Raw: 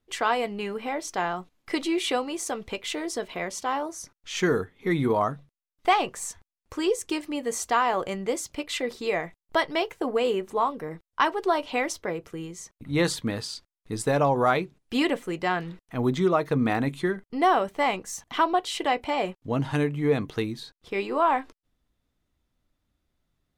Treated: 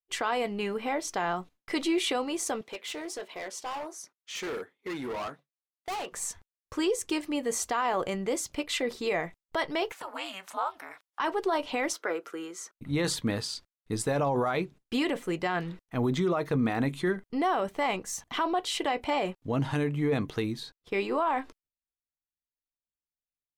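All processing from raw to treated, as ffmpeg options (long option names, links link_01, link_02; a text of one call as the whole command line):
ffmpeg -i in.wav -filter_complex "[0:a]asettb=1/sr,asplit=3[link_01][link_02][link_03];[link_01]atrim=end=2.614[link_04];[link_02]atrim=start=2.61:end=6.12,asetpts=PTS-STARTPTS,afade=type=in:duration=0.004:curve=qsin,afade=type=out:start_time=3.506:duration=0.004:curve=qsin,highpass=320,flanger=delay=0.8:depth=10:regen=-75:speed=1.4:shape=triangular,volume=32dB,asoftclip=hard,volume=-32dB[link_05];[link_03]atrim=start=6.116[link_06];[link_04][link_05]acrossfade=duration=0.004:curve1=hsin:curve2=qsin[link_07];[link_07][link_06]acrossfade=duration=0.004:curve1=qsin:curve2=hsin,asettb=1/sr,asplit=3[link_08][link_09][link_10];[link_08]atrim=end=9.924[link_11];[link_09]atrim=start=9.92:end=11.2,asetpts=PTS-STARTPTS,afade=type=in:duration=0.004:curve=qsin,afade=type=out:start_time=1.276:duration=0.004:curve=qsin,highpass=frequency=800:width=0.5412,highpass=frequency=800:width=1.3066,acompressor=mode=upward:threshold=-31dB:ratio=2.5:attack=3.2:release=140:knee=2.83:detection=peak,aeval=exprs='val(0)*sin(2*PI*190*n/s)':channel_layout=same[link_12];[link_10]atrim=start=11.196[link_13];[link_11][link_12]acrossfade=duration=0.004:curve1=hsin:curve2=qsin[link_14];[link_14][link_13]acrossfade=duration=0.004:curve1=qsin:curve2=hsin,asettb=1/sr,asplit=3[link_15][link_16][link_17];[link_15]atrim=end=11.934[link_18];[link_16]atrim=start=11.93:end=12.75,asetpts=PTS-STARTPTS,afade=type=in:duration=0.004:curve=qsin,afade=type=out:start_time=0.816:duration=0.004:curve=qsin,highpass=frequency=290:width=0.5412,highpass=frequency=290:width=1.3066,equalizer=frequency=1400:width_type=o:width=0.37:gain=13.5[link_19];[link_17]atrim=start=12.746[link_20];[link_18][link_19]acrossfade=duration=0.004:curve1=hsin:curve2=qsin[link_21];[link_21][link_20]acrossfade=duration=0.004:curve1=qsin:curve2=hsin,agate=range=-33dB:threshold=-45dB:ratio=3:detection=peak,alimiter=limit=-19.5dB:level=0:latency=1:release=22" out.wav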